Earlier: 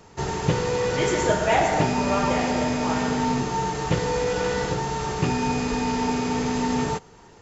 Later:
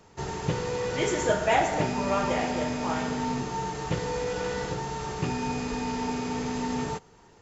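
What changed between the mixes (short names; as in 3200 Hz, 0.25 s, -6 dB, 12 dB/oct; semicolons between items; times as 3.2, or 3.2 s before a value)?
speech: send -7.0 dB; background -6.0 dB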